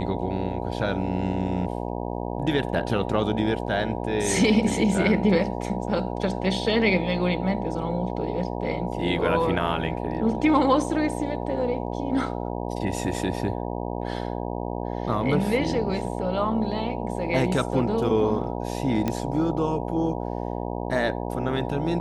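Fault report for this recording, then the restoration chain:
buzz 60 Hz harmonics 16 -30 dBFS
19.08 pop -12 dBFS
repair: de-click; de-hum 60 Hz, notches 16

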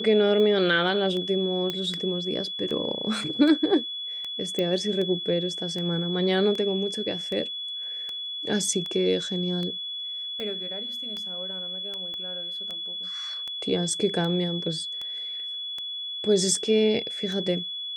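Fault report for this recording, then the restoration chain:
tick 78 rpm -21 dBFS
tone 3400 Hz -31 dBFS
1.7 pop -15 dBFS
4.59 pop -15 dBFS
12.14 pop -26 dBFS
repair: de-click; notch 3400 Hz, Q 30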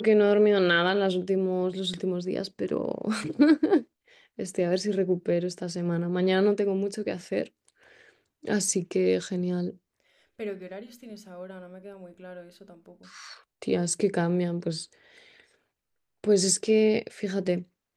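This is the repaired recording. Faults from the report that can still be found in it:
12.14 pop

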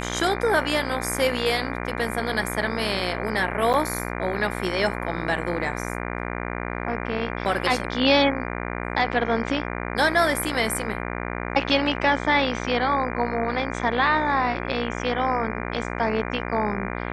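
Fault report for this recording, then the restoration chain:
buzz 60 Hz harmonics 40 -30 dBFS
3.73–3.74 gap 8.6 ms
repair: de-hum 60 Hz, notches 40; interpolate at 3.73, 8.6 ms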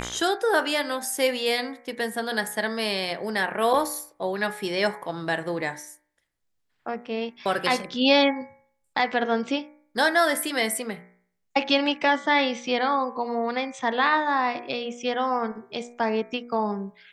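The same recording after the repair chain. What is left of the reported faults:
none

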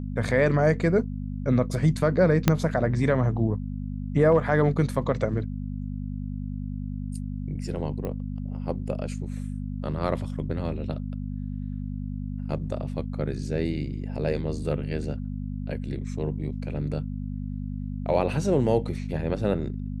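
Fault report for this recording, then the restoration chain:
hum 50 Hz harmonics 5 -32 dBFS
2.48 pop -4 dBFS
8.05 pop -21 dBFS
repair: de-click; de-hum 50 Hz, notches 5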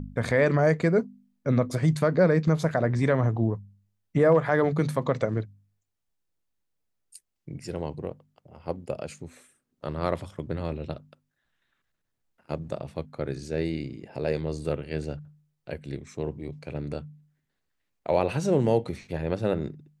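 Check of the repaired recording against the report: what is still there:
2.48 pop

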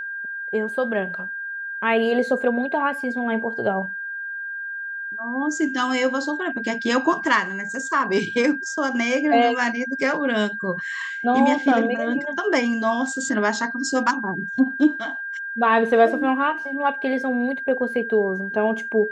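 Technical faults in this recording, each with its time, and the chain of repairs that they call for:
tone 1600 Hz -28 dBFS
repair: notch 1600 Hz, Q 30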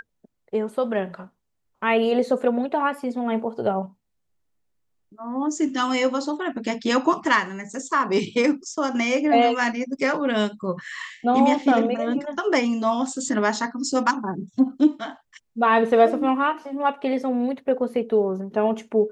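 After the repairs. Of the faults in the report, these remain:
none

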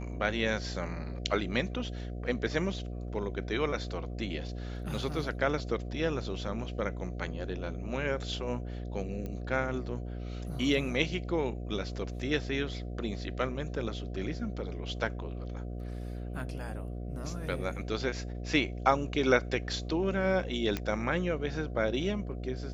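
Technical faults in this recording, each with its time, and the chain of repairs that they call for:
buzz 60 Hz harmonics 12 -38 dBFS
9.26 pop -26 dBFS
20.77 pop -17 dBFS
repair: de-click; de-hum 60 Hz, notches 12

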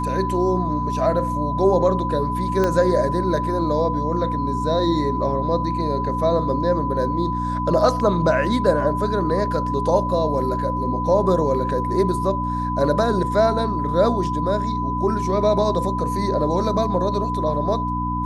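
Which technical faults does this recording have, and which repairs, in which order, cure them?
hum 60 Hz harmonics 5 -26 dBFS
tone 1000 Hz -24 dBFS
2.64 pop -9 dBFS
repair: de-click; de-hum 60 Hz, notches 5; notch 1000 Hz, Q 30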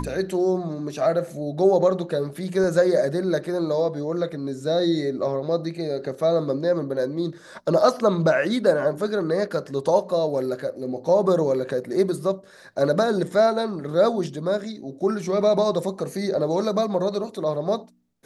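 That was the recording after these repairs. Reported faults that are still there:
2.64 pop

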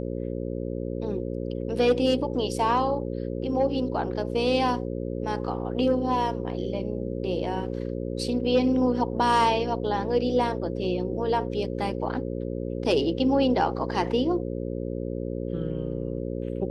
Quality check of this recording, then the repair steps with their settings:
buzz 60 Hz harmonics 9 -31 dBFS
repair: de-hum 60 Hz, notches 9

